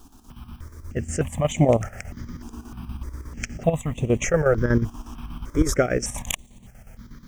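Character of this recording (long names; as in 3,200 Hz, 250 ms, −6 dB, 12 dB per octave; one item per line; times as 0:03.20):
a quantiser's noise floor 10 bits, dither none
chopped level 8.3 Hz, depth 60%, duty 65%
notches that jump at a steady rate 3.3 Hz 550–5,100 Hz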